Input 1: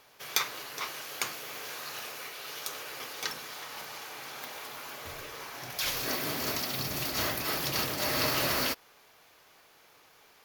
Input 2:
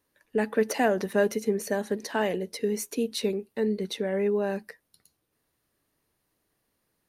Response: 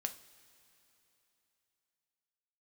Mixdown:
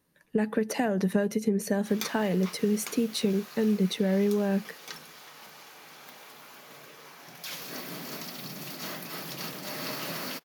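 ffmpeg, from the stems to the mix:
-filter_complex "[0:a]highpass=f=170:w=0.5412,highpass=f=170:w=1.3066,adelay=1650,volume=-7dB[a];[1:a]acompressor=threshold=-27dB:ratio=6,volume=1.5dB[b];[a][b]amix=inputs=2:normalize=0,equalizer=f=170:t=o:w=0.68:g=13"

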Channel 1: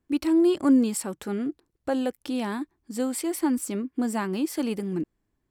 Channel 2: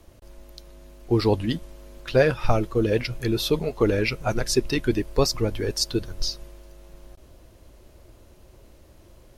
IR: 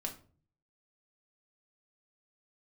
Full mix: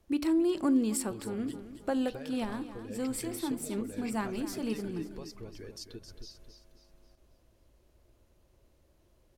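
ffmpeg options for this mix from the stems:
-filter_complex "[0:a]acompressor=threshold=-24dB:ratio=2.5,volume=-4dB,asplit=3[a][b][c];[b]volume=-10.5dB[d];[c]volume=-15dB[e];[1:a]acompressor=threshold=-26dB:ratio=6,volume=-15.5dB,asplit=3[f][g][h];[g]volume=-9dB[i];[h]apad=whole_len=242606[j];[a][j]sidechaincompress=threshold=-52dB:ratio=3:attack=16:release=156[k];[2:a]atrim=start_sample=2205[l];[d][l]afir=irnorm=-1:irlink=0[m];[e][i]amix=inputs=2:normalize=0,aecho=0:1:268|536|804|1072|1340|1608:1|0.4|0.16|0.064|0.0256|0.0102[n];[k][f][m][n]amix=inputs=4:normalize=0"

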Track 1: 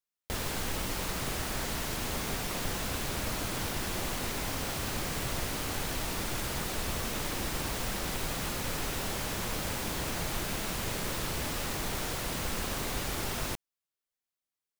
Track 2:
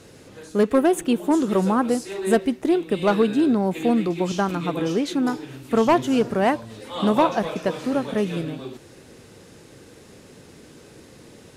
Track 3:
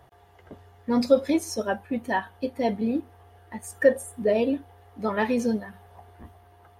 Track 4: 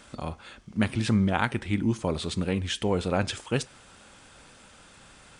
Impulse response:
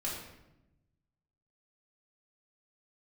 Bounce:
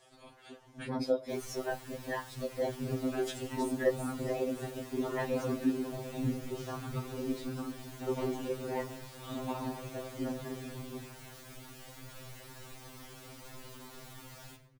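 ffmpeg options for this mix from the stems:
-filter_complex "[0:a]acrusher=bits=2:mode=log:mix=0:aa=0.000001,adelay=1000,volume=-11.5dB,asplit=2[a][b];[b]volume=-7.5dB[c];[1:a]aphaser=in_gain=1:out_gain=1:delay=3.4:decay=0.52:speed=1.5:type=sinusoidal,adelay=2300,volume=-14dB,asplit=2[d][e];[e]volume=-6dB[f];[2:a]highpass=360,volume=2dB,asplit=2[g][h];[3:a]tiltshelf=f=1.1k:g=-10,dynaudnorm=f=110:g=9:m=6.5dB,volume=-11.5dB[i];[h]apad=whole_len=237851[j];[i][j]sidechaincompress=threshold=-42dB:ratio=8:attack=16:release=149[k];[d][g][k]amix=inputs=3:normalize=0,lowshelf=f=350:g=9,acompressor=threshold=-32dB:ratio=1.5,volume=0dB[l];[4:a]atrim=start_sample=2205[m];[c][f]amix=inputs=2:normalize=0[n];[n][m]afir=irnorm=-1:irlink=0[o];[a][l][o]amix=inputs=3:normalize=0,afftfilt=real='hypot(re,im)*cos(2*PI*random(0))':imag='hypot(re,im)*sin(2*PI*random(1))':win_size=512:overlap=0.75,afftfilt=real='re*2.45*eq(mod(b,6),0)':imag='im*2.45*eq(mod(b,6),0)':win_size=2048:overlap=0.75"

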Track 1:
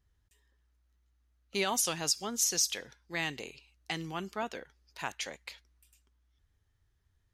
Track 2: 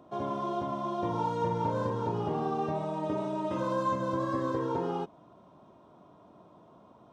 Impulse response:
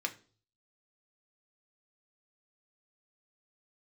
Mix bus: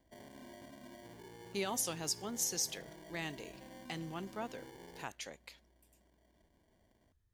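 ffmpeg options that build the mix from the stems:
-filter_complex "[0:a]equalizer=f=2.4k:w=0.31:g=-6,volume=-3dB[a];[1:a]alimiter=level_in=4dB:limit=-24dB:level=0:latency=1:release=66,volume=-4dB,acrusher=samples=34:mix=1:aa=0.000001,volume=-17.5dB[b];[a][b]amix=inputs=2:normalize=0"

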